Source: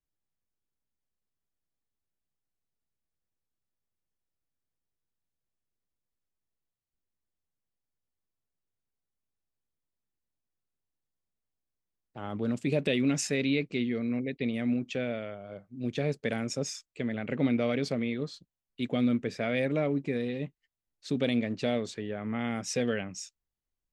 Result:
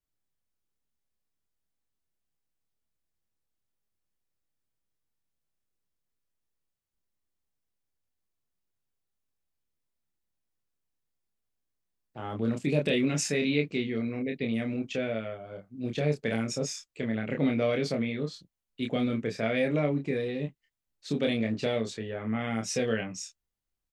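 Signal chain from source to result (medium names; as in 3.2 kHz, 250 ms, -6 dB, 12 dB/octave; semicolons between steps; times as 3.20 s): doubling 27 ms -3.5 dB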